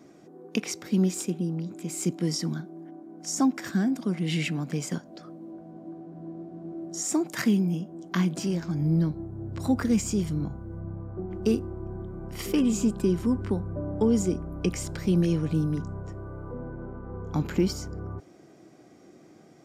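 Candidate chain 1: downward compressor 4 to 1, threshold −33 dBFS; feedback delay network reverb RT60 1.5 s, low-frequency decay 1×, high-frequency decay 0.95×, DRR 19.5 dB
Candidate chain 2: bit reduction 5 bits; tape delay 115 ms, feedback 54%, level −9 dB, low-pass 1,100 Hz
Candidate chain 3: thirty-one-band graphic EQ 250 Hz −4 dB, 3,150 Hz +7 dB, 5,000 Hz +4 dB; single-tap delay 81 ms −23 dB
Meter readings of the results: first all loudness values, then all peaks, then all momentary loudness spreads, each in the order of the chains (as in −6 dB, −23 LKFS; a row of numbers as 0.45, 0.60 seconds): −37.0, −27.0, −29.0 LKFS; −17.5, −11.5, −12.0 dBFS; 9, 16, 15 LU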